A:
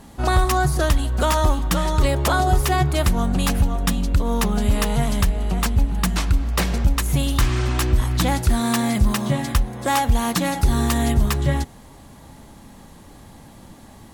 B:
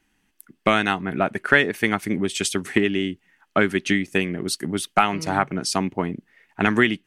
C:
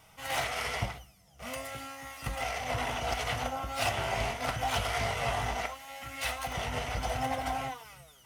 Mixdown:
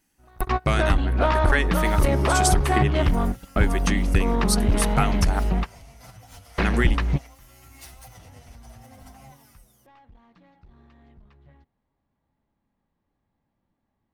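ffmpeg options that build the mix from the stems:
-filter_complex "[0:a]aeval=exprs='clip(val(0),-1,0.119)':c=same,lowpass=f=2.9k:w=0.5412,lowpass=f=2.9k:w=1.3066,volume=0dB[a];[1:a]equalizer=f=81:w=1:g=-6,volume=-6.5dB,asplit=3[b][c][d];[b]atrim=end=5.4,asetpts=PTS-STARTPTS,afade=t=out:st=5.396:d=0.004:c=hsin[e];[c]atrim=start=5.4:end=6.45,asetpts=PTS-STARTPTS,volume=0[f];[d]atrim=start=6.45,asetpts=PTS-STARTPTS,afade=t=in:d=0.004:c=hsin[g];[e][f][g]concat=n=3:v=0:a=1,asplit=2[h][i];[2:a]equalizer=f=83:w=0.41:g=13,acompressor=threshold=-31dB:ratio=6,asplit=2[j][k];[k]adelay=7.7,afreqshift=-1.5[l];[j][l]amix=inputs=2:normalize=1,adelay=1600,volume=-10dB[m];[i]apad=whole_len=623334[n];[a][n]sidechaingate=range=-33dB:threshold=-58dB:ratio=16:detection=peak[o];[o][h][m]amix=inputs=3:normalize=0,aexciter=amount=3.2:drive=4.7:freq=4.4k"

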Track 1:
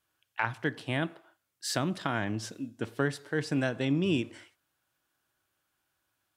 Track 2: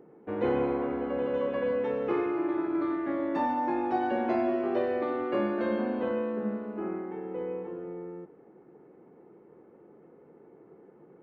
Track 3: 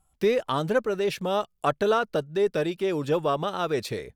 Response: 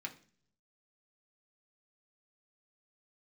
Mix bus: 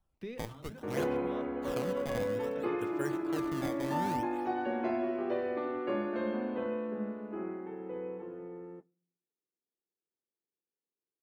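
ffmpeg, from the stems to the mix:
-filter_complex "[0:a]equalizer=f=300:t=o:w=0.29:g=-6.5,acrusher=samples=18:mix=1:aa=0.000001:lfo=1:lforange=28.8:lforate=0.6,volume=-9dB,asplit=2[a][b];[1:a]agate=range=-43dB:threshold=-43dB:ratio=16:detection=peak,adelay=550,volume=-5dB,asplit=2[c][d];[d]volume=-14.5dB[e];[2:a]bass=f=250:g=8,treble=f=4k:g=-13,acrossover=split=180|3000[f][g][h];[g]acompressor=threshold=-40dB:ratio=1.5[i];[f][i][h]amix=inputs=3:normalize=0,volume=-15.5dB,asplit=2[j][k];[k]volume=-7dB[l];[b]apad=whole_len=183429[m];[j][m]sidechaincompress=threshold=-50dB:ratio=8:attack=5.6:release=304[n];[3:a]atrim=start_sample=2205[o];[e][l]amix=inputs=2:normalize=0[p];[p][o]afir=irnorm=-1:irlink=0[q];[a][c][n][q]amix=inputs=4:normalize=0"

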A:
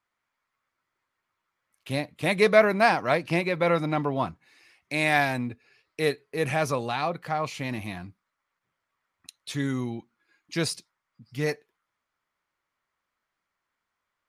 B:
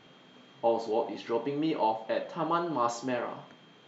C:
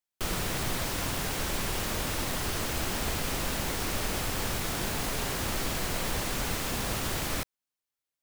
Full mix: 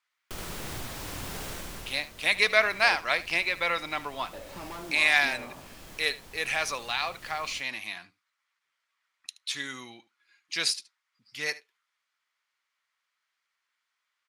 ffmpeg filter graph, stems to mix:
-filter_complex "[0:a]bandpass=f=2.9k:t=q:w=0.58:csg=0,highshelf=f=2k:g=9.5,volume=-1dB,asplit=3[a][b][c];[b]volume=-18.5dB[d];[1:a]volume=29dB,asoftclip=hard,volume=-29dB,acompressor=threshold=-37dB:ratio=6,adelay=2200,volume=-2.5dB,asplit=3[e][f][g];[e]atrim=end=2.96,asetpts=PTS-STARTPTS,afade=t=out:st=2.956:d=0.004:c=hsin[h];[f]atrim=start=2.96:end=4.33,asetpts=PTS-STARTPTS,volume=0[i];[g]atrim=start=4.33,asetpts=PTS-STARTPTS,afade=t=in:d=0.004:c=hsin[j];[h][i][j]concat=n=3:v=0:a=1[k];[2:a]alimiter=limit=-23dB:level=0:latency=1:release=416,adelay=100,volume=-5dB,afade=t=out:st=1.51:d=0.49:silence=0.334965,asplit=2[l][m];[m]volume=-3dB[n];[c]apad=whole_len=367087[o];[l][o]sidechaincompress=threshold=-33dB:ratio=8:attack=12:release=580[p];[d][n]amix=inputs=2:normalize=0,aecho=0:1:75:1[q];[a][k][p][q]amix=inputs=4:normalize=0"

